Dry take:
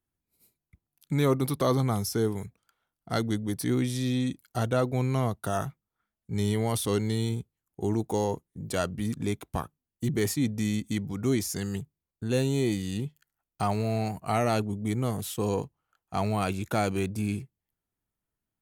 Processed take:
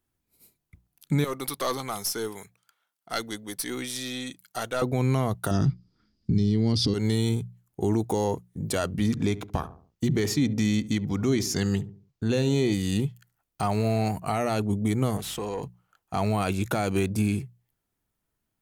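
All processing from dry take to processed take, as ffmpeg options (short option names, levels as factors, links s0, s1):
-filter_complex "[0:a]asettb=1/sr,asplit=3[s0][s1][s2];[s0]atrim=end=1.244[s3];[s1]atrim=start=1.24:end=4.82,asetpts=PTS-STARTPTS,afade=t=in:d=0.004:c=qsin,afade=t=out:st=3.576:d=0.004:c=qsin,highpass=f=1200:p=1,aeval=exprs='(tanh(14.1*val(0)+0.35)-tanh(0.35))/14.1':c=same[s4];[s2]atrim=start=4.816[s5];[s3][s4]acrossfade=d=0.004:c1=hsin:c2=qsin[s6];[s6][s5]acrossfade=d=0.004:c1=qsin:c2=hsin,asettb=1/sr,asplit=3[s7][s8][s9];[s7]atrim=end=5.514[s10];[s8]atrim=start=5.51:end=6.94,asetpts=PTS-STARTPTS,afade=t=in:d=0.004:c=qsin,afade=t=out:st=1.426:d=0.004:c=qsin,lowpass=f=4900:t=q:w=16,lowshelf=f=450:t=q:w=1.5:g=13.5[s11];[s9]atrim=start=6.936[s12];[s10][s11]acrossfade=d=0.004:c1=hsin:c2=qsin[s13];[s13][s12]acrossfade=d=0.004:c1=qsin:c2=hsin,asettb=1/sr,asplit=3[s14][s15][s16];[s14]atrim=end=8.994[s17];[s15]atrim=start=8.99:end=12.74,asetpts=PTS-STARTPTS,afade=t=in:d=0.004:c=qsin,afade=t=out:st=3.746:d=0.004:c=qsin,highshelf=f=7300:t=q:w=1.5:g=-7,asplit=2[s18][s19];[s19]adelay=70,lowpass=f=860:p=1,volume=0.178,asplit=2[s20][s21];[s21]adelay=70,lowpass=f=860:p=1,volume=0.43,asplit=2[s22][s23];[s23]adelay=70,lowpass=f=860:p=1,volume=0.43,asplit=2[s24][s25];[s25]adelay=70,lowpass=f=860:p=1,volume=0.43[s26];[s18][s20][s22][s24][s26]amix=inputs=5:normalize=0,atrim=end_sample=165375[s27];[s16]atrim=start=12.736[s28];[s17][s27]acrossfade=d=0.004:c1=hsin:c2=qsin[s29];[s29][s28]acrossfade=d=0.004:c1=qsin:c2=hsin,asettb=1/sr,asplit=3[s30][s31][s32];[s30]atrim=end=15.174[s33];[s31]atrim=start=15.17:end=15.63,asetpts=PTS-STARTPTS,afade=t=in:d=0.004:c=qsin,afade=t=out:st=0.456:d=0.004:c=qsin,acompressor=threshold=0.0178:ratio=5:attack=3.2:release=140:knee=1:detection=peak,asplit=2[s34][s35];[s35]highpass=f=720:p=1,volume=4.47,asoftclip=type=tanh:threshold=0.0447[s36];[s34][s36]amix=inputs=2:normalize=0,lowpass=f=3200:p=1,volume=0.501,aeval=exprs='val(0)+0.00112*(sin(2*PI*50*n/s)+sin(2*PI*2*50*n/s)/2+sin(2*PI*3*50*n/s)/3+sin(2*PI*4*50*n/s)/4+sin(2*PI*5*50*n/s)/5)':c=same[s37];[s32]atrim=start=15.626[s38];[s33][s37]acrossfade=d=0.004:c1=hsin:c2=qsin[s39];[s39][s38]acrossfade=d=0.004:c1=qsin:c2=hsin,alimiter=limit=0.0891:level=0:latency=1:release=142,bandreject=f=60:t=h:w=6,bandreject=f=120:t=h:w=6,bandreject=f=180:t=h:w=6,volume=2.11"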